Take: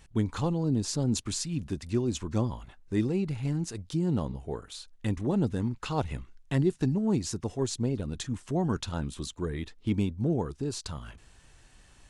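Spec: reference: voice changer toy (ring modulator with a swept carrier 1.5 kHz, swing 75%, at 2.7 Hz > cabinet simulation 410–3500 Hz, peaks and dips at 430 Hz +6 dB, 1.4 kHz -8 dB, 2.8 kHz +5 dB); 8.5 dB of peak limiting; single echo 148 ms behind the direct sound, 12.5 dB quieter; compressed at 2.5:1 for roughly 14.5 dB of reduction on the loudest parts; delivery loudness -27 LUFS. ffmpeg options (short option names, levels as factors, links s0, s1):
-af "acompressor=threshold=0.00562:ratio=2.5,alimiter=level_in=3.55:limit=0.0631:level=0:latency=1,volume=0.282,aecho=1:1:148:0.237,aeval=exprs='val(0)*sin(2*PI*1500*n/s+1500*0.75/2.7*sin(2*PI*2.7*n/s))':c=same,highpass=410,equalizer=f=430:t=q:w=4:g=6,equalizer=f=1400:t=q:w=4:g=-8,equalizer=f=2800:t=q:w=4:g=5,lowpass=f=3500:w=0.5412,lowpass=f=3500:w=1.3066,volume=8.41"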